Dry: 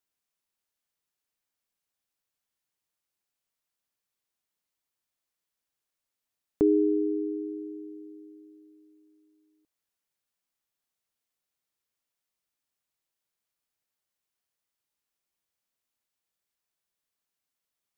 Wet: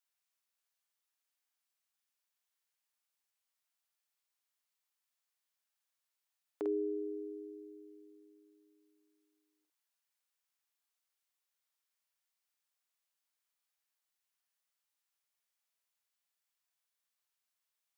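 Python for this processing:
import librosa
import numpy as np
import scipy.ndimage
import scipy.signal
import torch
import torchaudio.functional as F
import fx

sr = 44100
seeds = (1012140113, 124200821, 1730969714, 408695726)

y = scipy.signal.sosfilt(scipy.signal.butter(2, 760.0, 'highpass', fs=sr, output='sos'), x)
y = fx.doubler(y, sr, ms=49.0, db=-4)
y = y * librosa.db_to_amplitude(-2.5)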